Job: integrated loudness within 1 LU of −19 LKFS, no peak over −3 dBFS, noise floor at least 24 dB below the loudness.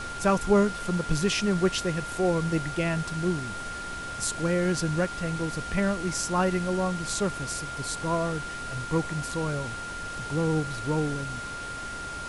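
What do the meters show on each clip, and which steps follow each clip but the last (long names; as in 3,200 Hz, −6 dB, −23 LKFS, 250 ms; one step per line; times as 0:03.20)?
interfering tone 1,400 Hz; level of the tone −35 dBFS; background noise floor −36 dBFS; target noise floor −52 dBFS; integrated loudness −28.0 LKFS; sample peak −10.5 dBFS; target loudness −19.0 LKFS
→ notch filter 1,400 Hz, Q 30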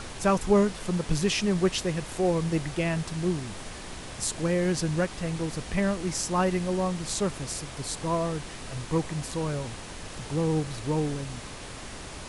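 interfering tone none found; background noise floor −41 dBFS; target noise floor −53 dBFS
→ noise reduction from a noise print 12 dB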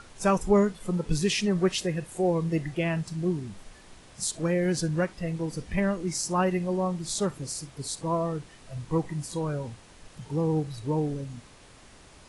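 background noise floor −52 dBFS; target noise floor −53 dBFS
→ noise reduction from a noise print 6 dB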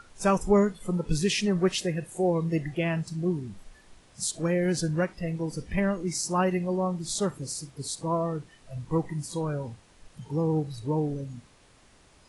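background noise floor −58 dBFS; integrated loudness −28.5 LKFS; sample peak −11.0 dBFS; target loudness −19.0 LKFS
→ level +9.5 dB
brickwall limiter −3 dBFS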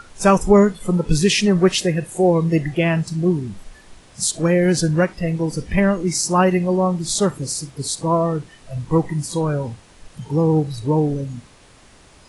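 integrated loudness −19.0 LKFS; sample peak −3.0 dBFS; background noise floor −49 dBFS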